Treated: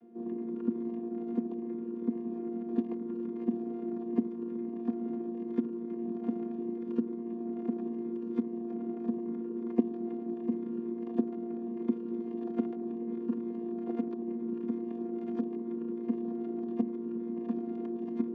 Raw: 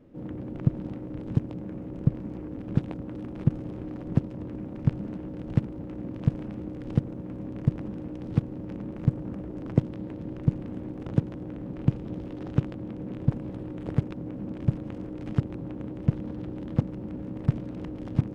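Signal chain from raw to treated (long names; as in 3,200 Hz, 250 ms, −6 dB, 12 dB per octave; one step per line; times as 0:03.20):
channel vocoder with a chord as carrier bare fifth, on A#3
level −3 dB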